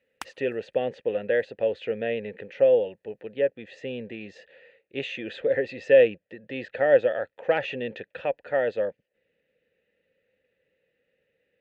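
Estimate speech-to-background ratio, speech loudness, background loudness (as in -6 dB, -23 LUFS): 18.0 dB, -26.0 LUFS, -44.0 LUFS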